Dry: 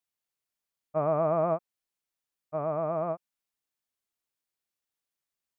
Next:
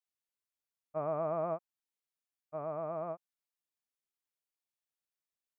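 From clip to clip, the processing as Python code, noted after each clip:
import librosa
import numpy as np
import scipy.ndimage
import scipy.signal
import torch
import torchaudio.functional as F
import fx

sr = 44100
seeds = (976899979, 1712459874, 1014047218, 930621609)

y = fx.low_shelf(x, sr, hz=180.0, db=-4.5)
y = y * librosa.db_to_amplitude(-7.5)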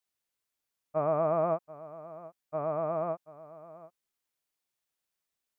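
y = x + 10.0 ** (-17.5 / 20.0) * np.pad(x, (int(734 * sr / 1000.0), 0))[:len(x)]
y = y * librosa.db_to_amplitude(6.5)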